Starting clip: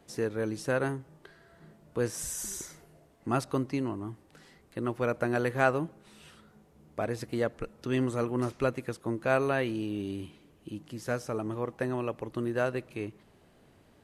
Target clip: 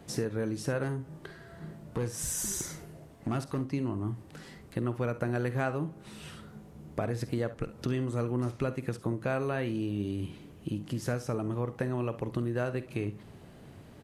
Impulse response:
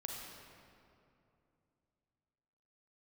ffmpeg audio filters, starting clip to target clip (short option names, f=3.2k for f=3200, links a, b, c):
-filter_complex "[0:a]equalizer=f=120:w=0.69:g=7.5,acompressor=threshold=-36dB:ratio=4,asettb=1/sr,asplit=3[a][b][c];[a]atrim=end=0.834[d];[b]atrim=start=0.83:end=3.61,asetpts=PTS-STARTPTS,afade=t=in:d=0.004:c=qsin,afade=t=out:st=2.776:d=0.004:c=qsin,asoftclip=type=hard:threshold=-32dB[e];[c]atrim=start=3.606[f];[d][e]acrossfade=d=0.004:c1=hsin:c2=qsin[g];[g][f]acrossfade=d=0.004:c1=qsin:c2=hsin,aecho=1:1:49|68:0.188|0.158,volume=6dB"